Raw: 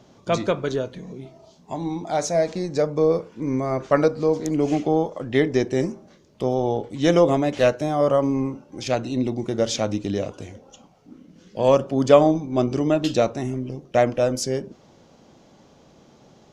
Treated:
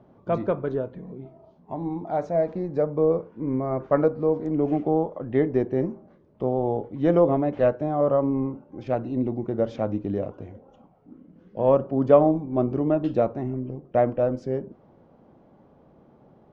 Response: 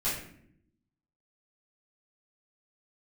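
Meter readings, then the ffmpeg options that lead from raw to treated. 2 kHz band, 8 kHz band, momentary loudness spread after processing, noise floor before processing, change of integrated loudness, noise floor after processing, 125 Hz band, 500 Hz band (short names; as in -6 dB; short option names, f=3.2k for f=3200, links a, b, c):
-10.0 dB, under -30 dB, 11 LU, -54 dBFS, -2.5 dB, -57 dBFS, -2.0 dB, -2.0 dB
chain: -af "lowpass=1.2k,volume=-2dB"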